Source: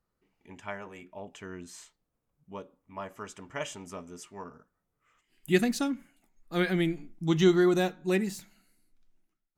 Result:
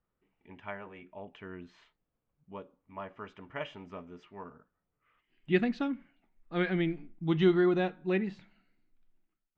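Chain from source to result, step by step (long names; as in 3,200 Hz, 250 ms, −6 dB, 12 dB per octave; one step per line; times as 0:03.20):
low-pass filter 3,300 Hz 24 dB per octave
level −2.5 dB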